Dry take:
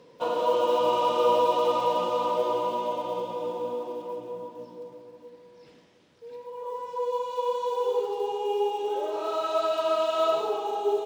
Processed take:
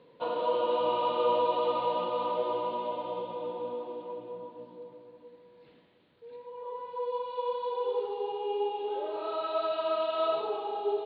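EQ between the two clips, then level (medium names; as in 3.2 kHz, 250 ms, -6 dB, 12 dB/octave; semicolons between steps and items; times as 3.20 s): steep low-pass 4.4 kHz 96 dB/octave; -4.5 dB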